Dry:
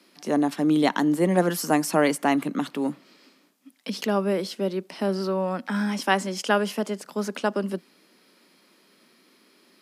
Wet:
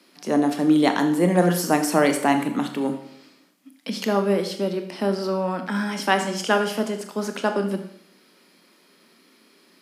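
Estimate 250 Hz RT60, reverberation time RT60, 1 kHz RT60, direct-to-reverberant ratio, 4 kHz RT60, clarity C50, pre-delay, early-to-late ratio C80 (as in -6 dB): 0.70 s, 0.70 s, 0.70 s, 6.0 dB, 0.65 s, 9.5 dB, 22 ms, 11.5 dB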